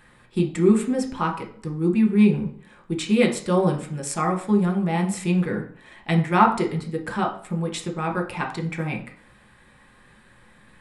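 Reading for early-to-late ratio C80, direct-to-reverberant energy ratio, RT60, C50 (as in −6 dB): 15.0 dB, 1.5 dB, 0.50 s, 10.5 dB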